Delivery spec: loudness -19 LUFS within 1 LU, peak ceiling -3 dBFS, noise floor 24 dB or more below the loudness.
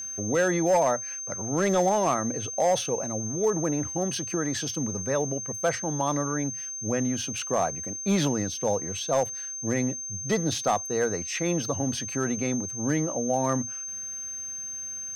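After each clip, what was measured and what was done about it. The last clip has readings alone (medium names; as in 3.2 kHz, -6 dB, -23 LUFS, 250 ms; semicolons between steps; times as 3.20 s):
clipped samples 0.5%; clipping level -16.5 dBFS; steady tone 6.3 kHz; tone level -33 dBFS; loudness -27.0 LUFS; peak level -16.5 dBFS; loudness target -19.0 LUFS
-> clip repair -16.5 dBFS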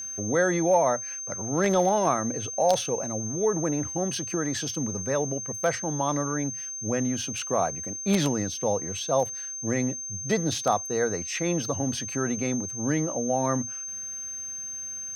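clipped samples 0.0%; steady tone 6.3 kHz; tone level -33 dBFS
-> band-stop 6.3 kHz, Q 30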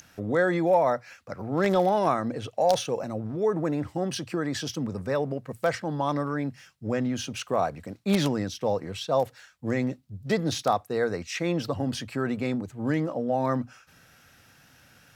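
steady tone not found; loudness -27.5 LUFS; peak level -7.5 dBFS; loudness target -19.0 LUFS
-> trim +8.5 dB; peak limiter -3 dBFS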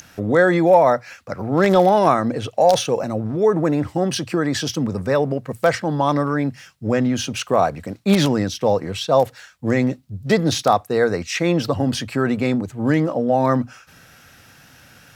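loudness -19.5 LUFS; peak level -3.0 dBFS; noise floor -49 dBFS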